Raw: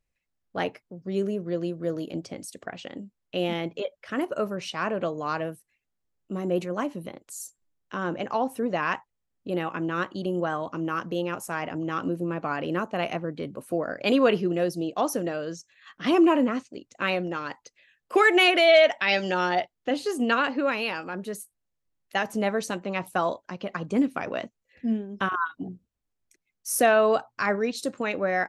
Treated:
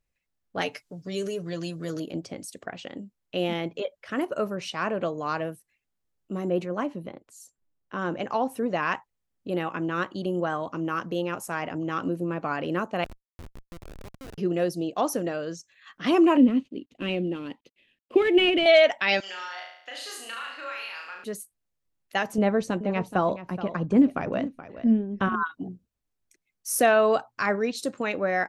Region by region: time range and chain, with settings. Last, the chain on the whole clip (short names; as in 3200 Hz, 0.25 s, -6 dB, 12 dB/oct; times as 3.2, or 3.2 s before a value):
0.61–2 bell 6700 Hz +15 dB 2.9 oct + comb 6.9 ms, depth 59% + compressor 1.5:1, threshold -33 dBFS
6.49–7.98 LPF 3500 Hz 6 dB/oct + mismatched tape noise reduction decoder only
13.04–14.38 median filter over 5 samples + compressor 12:1, threshold -35 dBFS + Schmitt trigger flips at -34.5 dBFS
16.37–18.66 CVSD 64 kbps + EQ curve 140 Hz 0 dB, 270 Hz +8 dB, 780 Hz -10 dB, 1500 Hz -15 dB, 3000 Hz +1 dB, 5600 Hz -19 dB, 10000 Hz -23 dB
19.2–21.24 HPF 1400 Hz + compressor, threshold -35 dBFS + flutter echo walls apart 6.1 m, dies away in 0.7 s
22.38–25.43 tilt -2.5 dB/oct + echo 0.425 s -13.5 dB
whole clip: dry